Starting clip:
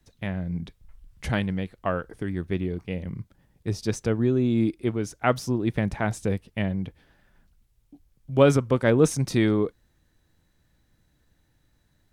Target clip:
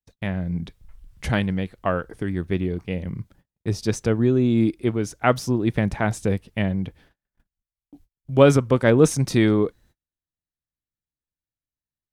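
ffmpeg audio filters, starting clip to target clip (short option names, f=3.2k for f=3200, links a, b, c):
-af "agate=range=-35dB:threshold=-55dB:ratio=16:detection=peak,volume=3.5dB"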